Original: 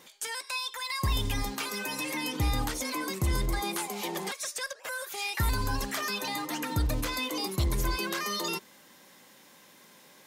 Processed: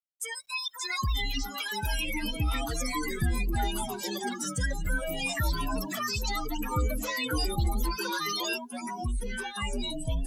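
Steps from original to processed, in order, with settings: expander on every frequency bin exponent 3; in parallel at +2.5 dB: peak limiter -33.5 dBFS, peak gain reduction 11.5 dB; on the sum: word length cut 12-bit, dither none; ever faster or slower copies 525 ms, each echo -4 st, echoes 2

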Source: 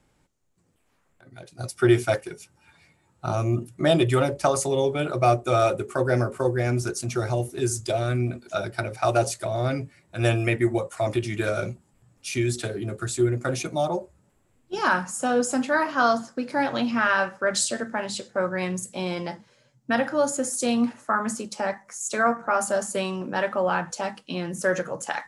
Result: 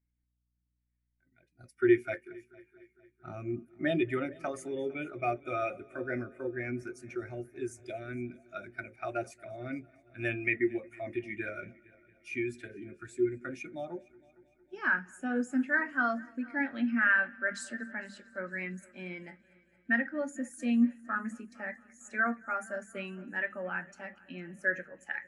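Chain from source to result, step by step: graphic EQ 125/250/500/1000/2000/4000/8000 Hz -10/+4/-6/-8/+11/-5/-4 dB; on a send: multi-head delay 228 ms, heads first and second, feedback 64%, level -19.5 dB; on the sum: hum 60 Hz, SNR 31 dB; spectral contrast expander 1.5:1; trim -5 dB

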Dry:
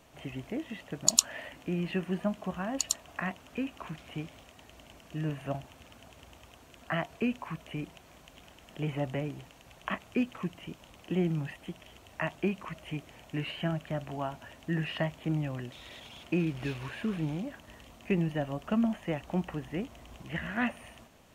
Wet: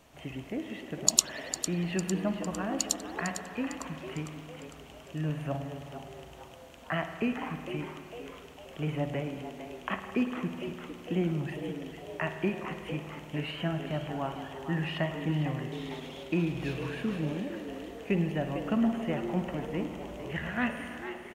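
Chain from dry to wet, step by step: frequency-shifting echo 453 ms, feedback 50%, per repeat +120 Hz, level -10.5 dB; on a send at -7 dB: reverberation RT60 2.4 s, pre-delay 52 ms

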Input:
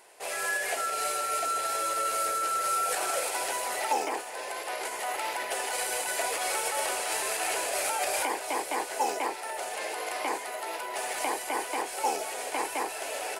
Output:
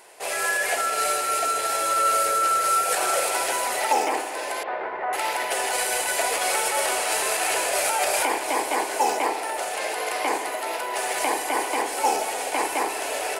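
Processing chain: 4.63–5.13 s: low-pass 1.8 kHz 24 dB/octave; spring tank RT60 1.9 s, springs 59 ms, chirp 55 ms, DRR 8 dB; trim +6 dB

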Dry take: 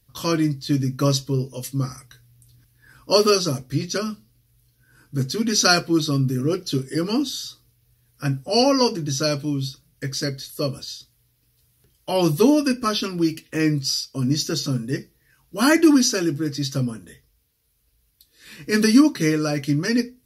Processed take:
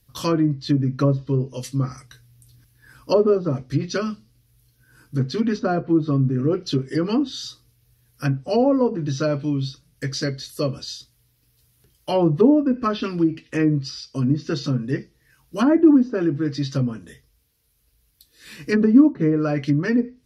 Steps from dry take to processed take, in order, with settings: low-pass that closes with the level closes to 680 Hz, closed at -15 dBFS; trim +1.5 dB

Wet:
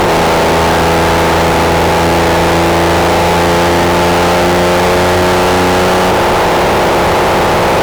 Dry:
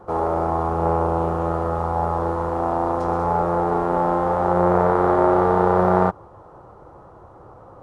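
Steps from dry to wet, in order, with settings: spectral levelling over time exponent 0.2; peaking EQ 1.2 kHz -3 dB 0.36 oct; fuzz box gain 32 dB, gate -40 dBFS; trim +4.5 dB

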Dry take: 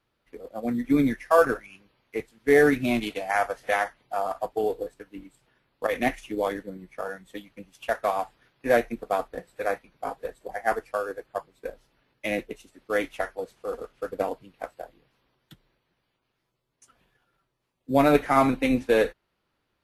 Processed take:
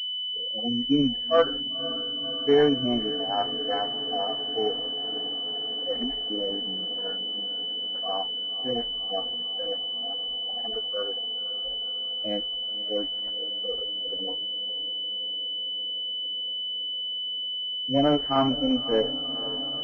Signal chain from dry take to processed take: harmonic-percussive separation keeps harmonic; echo that smears into a reverb 522 ms, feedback 78%, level -15 dB; class-D stage that switches slowly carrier 3 kHz; trim -1 dB

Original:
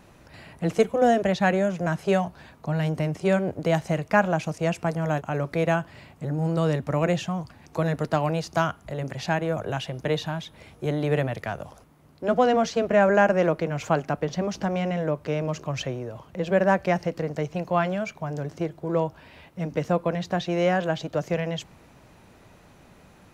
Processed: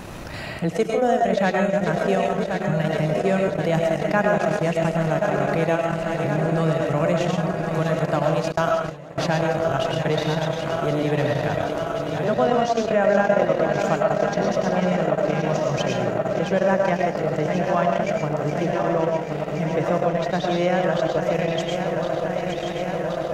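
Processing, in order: backward echo that repeats 538 ms, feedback 84%, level -9.5 dB; algorithmic reverb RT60 0.41 s, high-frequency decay 0.6×, pre-delay 70 ms, DRR 1 dB; 8.52–9.18 s: gate with hold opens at -13 dBFS; transient shaper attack +1 dB, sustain -12 dB; level flattener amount 50%; trim -4.5 dB

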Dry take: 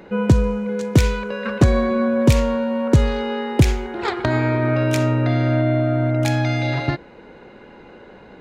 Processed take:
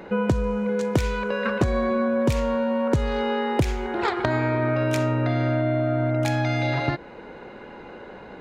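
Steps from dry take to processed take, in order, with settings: peaking EQ 960 Hz +4 dB 2.3 oct; compression 3:1, threshold -21 dBFS, peak gain reduction 10.5 dB

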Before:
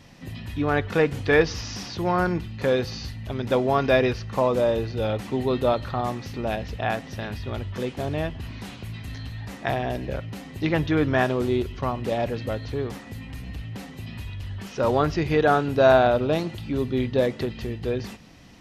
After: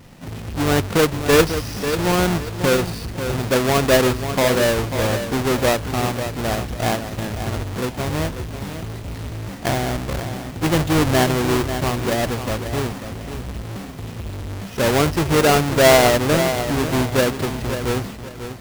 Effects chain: square wave that keeps the level; bit-crushed delay 541 ms, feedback 35%, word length 6-bit, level -8.5 dB

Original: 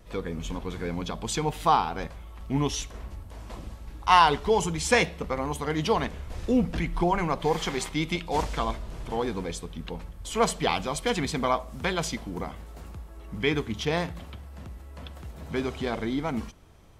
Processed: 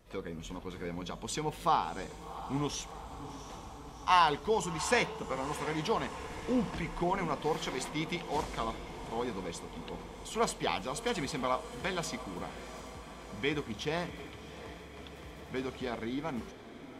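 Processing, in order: bass shelf 90 Hz -8.5 dB; echo that smears into a reverb 715 ms, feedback 71%, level -13.5 dB; trim -6.5 dB

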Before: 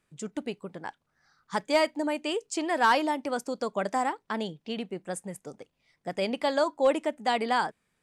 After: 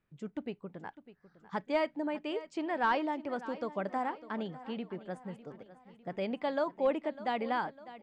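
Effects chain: low-pass 2.9 kHz 12 dB/octave; bass shelf 220 Hz +6.5 dB; feedback delay 602 ms, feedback 50%, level -16 dB; trim -7 dB

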